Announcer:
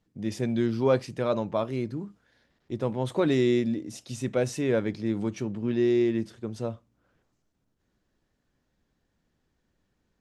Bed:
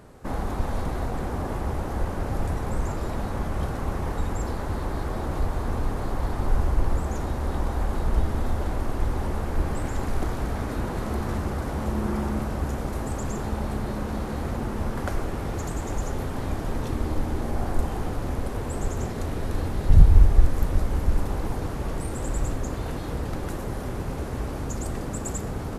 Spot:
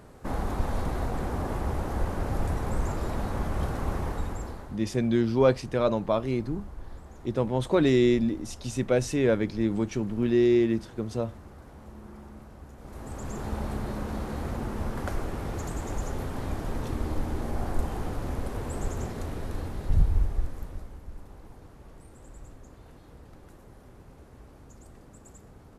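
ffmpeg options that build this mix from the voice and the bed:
-filter_complex "[0:a]adelay=4550,volume=1.26[s0];[1:a]volume=5.01,afade=t=out:st=3.95:d=0.84:silence=0.133352,afade=t=in:st=12.77:d=0.78:silence=0.16788,afade=t=out:st=18.87:d=2.12:silence=0.149624[s1];[s0][s1]amix=inputs=2:normalize=0"

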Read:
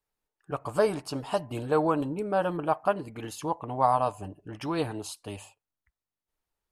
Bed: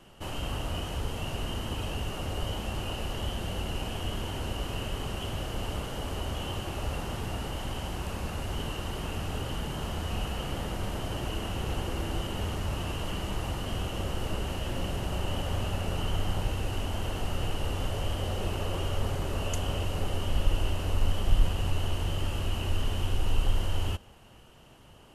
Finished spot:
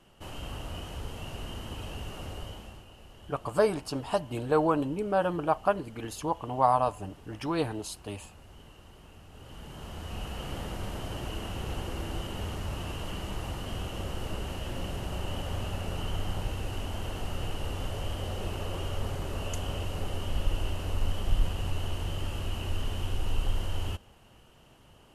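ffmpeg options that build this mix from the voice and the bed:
-filter_complex "[0:a]adelay=2800,volume=1[s0];[1:a]volume=2.99,afade=t=out:st=2.25:d=0.61:silence=0.237137,afade=t=in:st=9.31:d=1.23:silence=0.177828[s1];[s0][s1]amix=inputs=2:normalize=0"

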